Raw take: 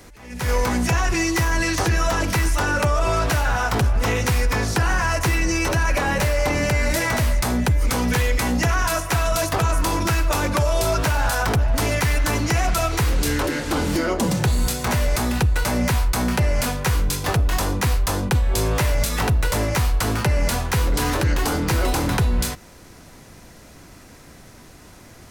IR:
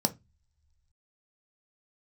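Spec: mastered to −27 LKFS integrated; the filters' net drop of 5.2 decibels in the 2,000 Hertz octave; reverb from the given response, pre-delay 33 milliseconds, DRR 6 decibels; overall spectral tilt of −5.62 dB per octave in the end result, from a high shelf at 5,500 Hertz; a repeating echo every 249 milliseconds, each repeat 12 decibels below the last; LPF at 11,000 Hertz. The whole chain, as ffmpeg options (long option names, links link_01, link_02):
-filter_complex "[0:a]lowpass=11000,equalizer=frequency=2000:width_type=o:gain=-6.5,highshelf=frequency=5500:gain=-3,aecho=1:1:249|498|747:0.251|0.0628|0.0157,asplit=2[link_01][link_02];[1:a]atrim=start_sample=2205,adelay=33[link_03];[link_02][link_03]afir=irnorm=-1:irlink=0,volume=-13dB[link_04];[link_01][link_04]amix=inputs=2:normalize=0,volume=-7.5dB"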